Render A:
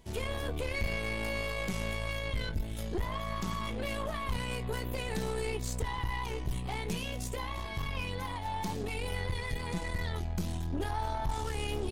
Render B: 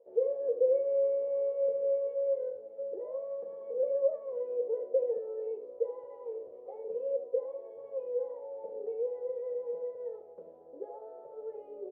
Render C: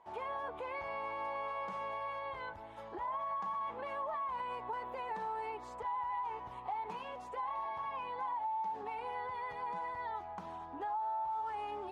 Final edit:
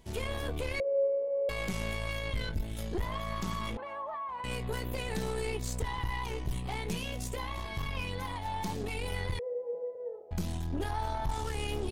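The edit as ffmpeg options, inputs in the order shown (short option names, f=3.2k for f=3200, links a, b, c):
-filter_complex "[1:a]asplit=2[a][b];[0:a]asplit=4[c][d][e][f];[c]atrim=end=0.802[g];[a]atrim=start=0.798:end=1.492[h];[d]atrim=start=1.488:end=3.772[i];[2:a]atrim=start=3.768:end=4.442[j];[e]atrim=start=4.438:end=9.392[k];[b]atrim=start=9.388:end=10.312[l];[f]atrim=start=10.308[m];[g][h]acrossfade=d=0.004:c1=hsin:c2=hsin[n];[n][i]acrossfade=d=0.004:c1=hsin:c2=hsin[o];[o][j]acrossfade=d=0.004:c1=hsin:c2=hsin[p];[p][k]acrossfade=d=0.004:c1=hsin:c2=hsin[q];[q][l]acrossfade=d=0.004:c1=hsin:c2=hsin[r];[r][m]acrossfade=d=0.004:c1=hsin:c2=hsin"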